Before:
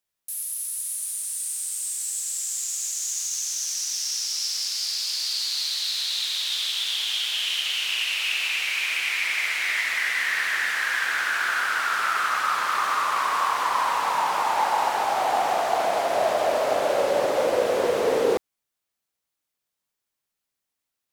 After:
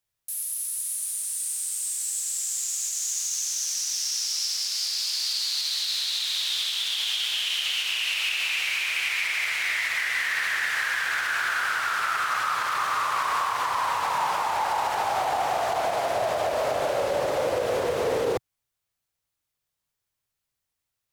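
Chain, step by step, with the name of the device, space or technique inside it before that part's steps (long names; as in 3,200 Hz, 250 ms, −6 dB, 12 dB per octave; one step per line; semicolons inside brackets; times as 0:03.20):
car stereo with a boomy subwoofer (low shelf with overshoot 160 Hz +8 dB, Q 1.5; brickwall limiter −17 dBFS, peak gain reduction 6.5 dB)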